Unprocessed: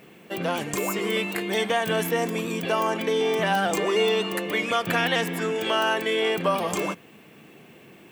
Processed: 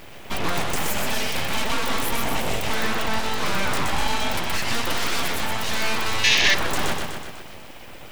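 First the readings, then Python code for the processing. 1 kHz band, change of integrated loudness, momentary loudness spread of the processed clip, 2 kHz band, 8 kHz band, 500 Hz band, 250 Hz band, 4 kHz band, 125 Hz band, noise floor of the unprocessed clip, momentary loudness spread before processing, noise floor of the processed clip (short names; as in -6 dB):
+0.5 dB, +1.0 dB, 14 LU, +3.0 dB, +7.0 dB, -7.0 dB, -2.5 dB, +5.0 dB, +2.0 dB, -50 dBFS, 5 LU, -39 dBFS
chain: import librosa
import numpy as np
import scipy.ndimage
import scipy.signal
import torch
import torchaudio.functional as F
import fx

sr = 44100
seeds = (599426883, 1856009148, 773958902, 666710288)

p1 = 10.0 ** (-24.0 / 20.0) * np.tanh(x / 10.0 ** (-24.0 / 20.0))
p2 = p1 + fx.echo_feedback(p1, sr, ms=124, feedback_pct=58, wet_db=-5.0, dry=0)
p3 = np.abs(p2)
p4 = fx.rider(p3, sr, range_db=4, speed_s=0.5)
p5 = p3 + (p4 * 10.0 ** (2.0 / 20.0))
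y = fx.spec_box(p5, sr, start_s=6.24, length_s=0.3, low_hz=1600.0, high_hz=6900.0, gain_db=12)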